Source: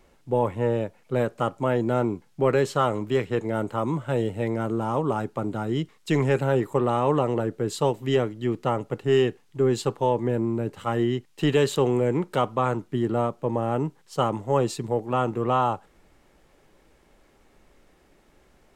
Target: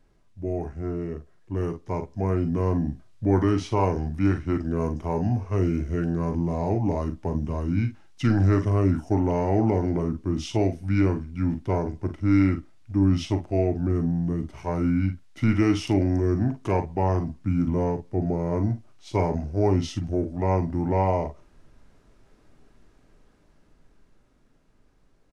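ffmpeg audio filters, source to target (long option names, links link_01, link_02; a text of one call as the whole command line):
ffmpeg -i in.wav -filter_complex "[0:a]lowshelf=frequency=190:gain=9,dynaudnorm=framelen=190:gausssize=17:maxgain=8.5dB,asetrate=32667,aresample=44100,asplit=2[link_01][link_02];[link_02]aecho=0:1:41|53:0.316|0.237[link_03];[link_01][link_03]amix=inputs=2:normalize=0,volume=-9dB" out.wav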